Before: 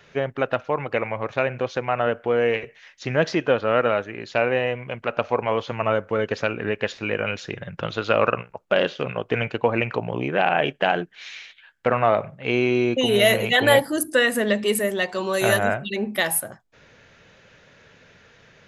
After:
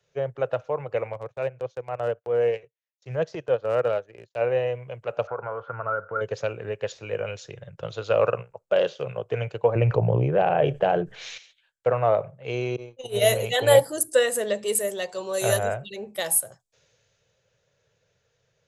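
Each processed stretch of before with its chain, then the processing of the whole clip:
0:01.13–0:04.41: noise gate −39 dBFS, range −24 dB + transient designer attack −5 dB, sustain −11 dB
0:05.27–0:06.21: downward compressor 3 to 1, threshold −26 dBFS + low-pass with resonance 1,400 Hz, resonance Q 16
0:09.75–0:11.38: spectral tilt −2.5 dB per octave + envelope flattener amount 50%
0:12.76–0:13.36: noise gate −19 dBFS, range −29 dB + double-tracking delay 26 ms −13 dB
whole clip: octave-band graphic EQ 125/250/500/2,000/8,000 Hz +9/−11/+10/−4/+11 dB; multiband upward and downward expander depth 40%; level −8 dB

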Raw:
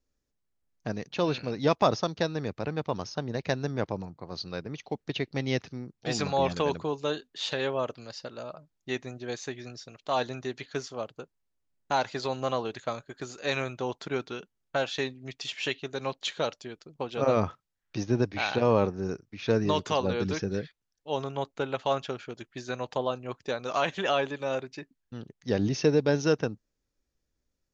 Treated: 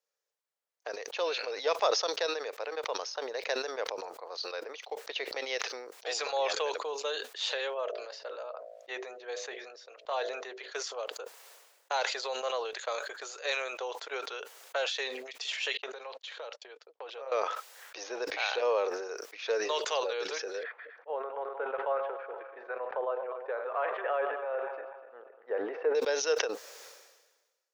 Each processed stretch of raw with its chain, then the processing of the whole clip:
0:07.74–0:10.72: low-pass filter 2,200 Hz 6 dB per octave + hum removal 54.96 Hz, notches 13
0:15.77–0:17.32: noise gate −49 dBFS, range −39 dB + downward compressor 4 to 1, threshold −38 dBFS + high-frequency loss of the air 110 metres
0:20.63–0:25.95: feedback delay that plays each chunk backwards 123 ms, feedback 59%, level −11.5 dB + low-pass filter 1,700 Hz 24 dB per octave
whole clip: elliptic high-pass filter 470 Hz, stop band 70 dB; dynamic equaliser 880 Hz, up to −5 dB, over −38 dBFS, Q 0.76; level that may fall only so fast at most 46 dB per second

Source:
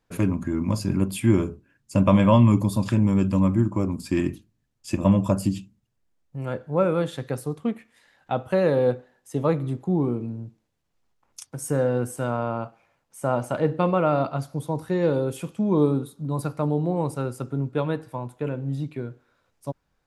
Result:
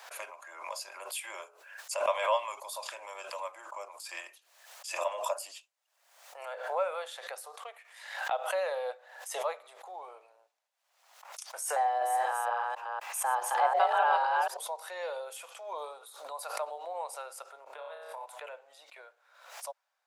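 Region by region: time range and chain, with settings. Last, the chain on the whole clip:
0:11.76–0:14.57: delay that plays each chunk backwards 247 ms, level −1 dB + frequency shifter +250 Hz
0:17.64–0:18.26: low-shelf EQ 490 Hz +5.5 dB + flutter between parallel walls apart 5.1 metres, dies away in 0.54 s + downward compressor 12 to 1, threshold −27 dBFS
whole clip: Butterworth high-pass 590 Hz 48 dB per octave; dynamic equaliser 1,300 Hz, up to −3 dB, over −43 dBFS, Q 1.1; background raised ahead of every attack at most 68 dB per second; level −3.5 dB

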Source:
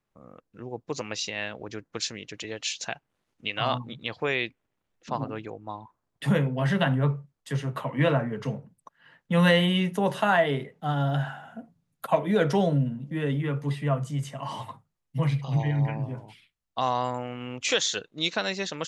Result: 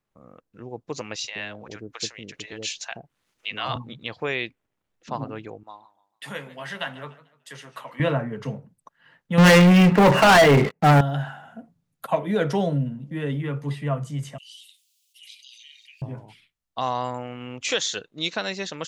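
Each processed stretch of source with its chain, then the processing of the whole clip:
0:01.16–0:03.76: multiband delay without the direct sound highs, lows 80 ms, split 620 Hz + one half of a high-frequency compander encoder only
0:05.63–0:08.00: high-pass filter 1,400 Hz 6 dB per octave + feedback echo with a swinging delay time 148 ms, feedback 34%, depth 151 cents, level −17 dB
0:09.38–0:11.01: linear-phase brick-wall low-pass 2,900 Hz + leveller curve on the samples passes 5
0:14.38–0:16.02: Butterworth high-pass 2,800 Hz 48 dB per octave + envelope flattener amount 50%
whole clip: no processing

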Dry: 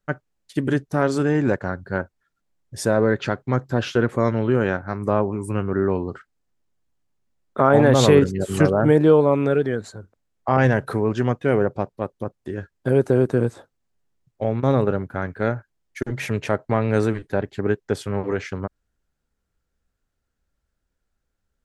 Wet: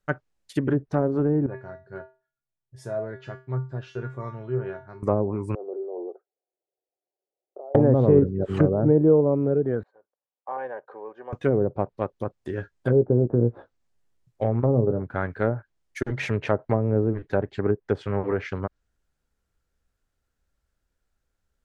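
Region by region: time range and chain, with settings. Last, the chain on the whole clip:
0:01.46–0:05.03: high-shelf EQ 2,400 Hz −9 dB + tuned comb filter 130 Hz, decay 0.31 s, harmonics odd, mix 90%
0:05.55–0:07.75: compressor whose output falls as the input rises −25 dBFS + elliptic band-pass filter 360–760 Hz, stop band 80 dB + flanger 2 Hz, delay 0.3 ms, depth 2.3 ms, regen +69%
0:09.83–0:11.33: mu-law and A-law mismatch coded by A + four-pole ladder band-pass 740 Hz, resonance 45% + notch comb filter 670 Hz
0:12.52–0:15.02: treble cut that deepens with the level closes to 800 Hz, closed at −12.5 dBFS + double-tracking delay 17 ms −9 dB
whole clip: treble cut that deepens with the level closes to 490 Hz, closed at −15.5 dBFS; parametric band 210 Hz −3 dB 1.2 octaves

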